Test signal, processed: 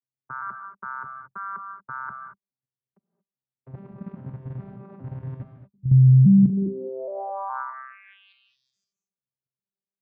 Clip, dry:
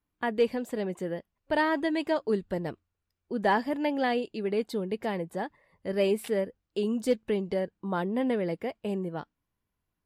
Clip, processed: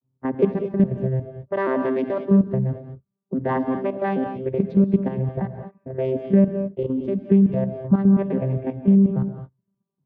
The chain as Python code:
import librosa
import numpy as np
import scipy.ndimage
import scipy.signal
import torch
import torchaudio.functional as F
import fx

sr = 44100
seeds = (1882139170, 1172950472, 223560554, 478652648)

y = fx.vocoder_arp(x, sr, chord='bare fifth', root=48, every_ms=416)
y = fx.bass_treble(y, sr, bass_db=11, treble_db=-15)
y = fx.level_steps(y, sr, step_db=10)
y = fx.env_lowpass(y, sr, base_hz=980.0, full_db=-23.5)
y = fx.rev_gated(y, sr, seeds[0], gate_ms=250, shape='rising', drr_db=7.0)
y = y * 10.0 ** (8.0 / 20.0)